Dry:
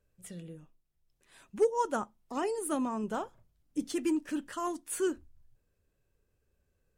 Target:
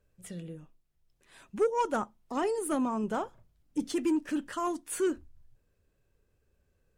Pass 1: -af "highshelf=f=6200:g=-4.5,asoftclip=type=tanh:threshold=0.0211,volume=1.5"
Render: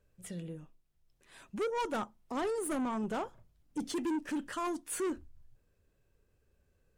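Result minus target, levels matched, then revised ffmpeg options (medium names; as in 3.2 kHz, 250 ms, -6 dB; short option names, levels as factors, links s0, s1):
saturation: distortion +9 dB
-af "highshelf=f=6200:g=-4.5,asoftclip=type=tanh:threshold=0.0668,volume=1.5"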